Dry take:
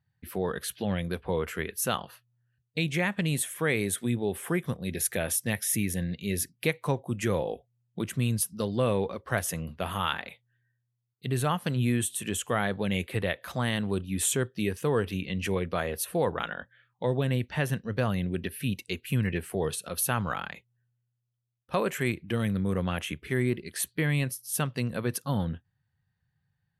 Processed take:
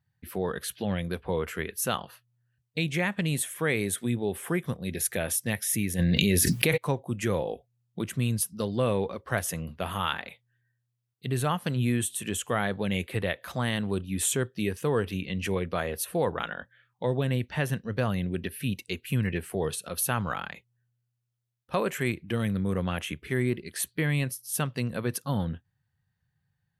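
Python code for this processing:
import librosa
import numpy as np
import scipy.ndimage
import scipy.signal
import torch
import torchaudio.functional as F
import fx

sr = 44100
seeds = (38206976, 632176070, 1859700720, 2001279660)

y = fx.env_flatten(x, sr, amount_pct=100, at=(5.98, 6.76), fade=0.02)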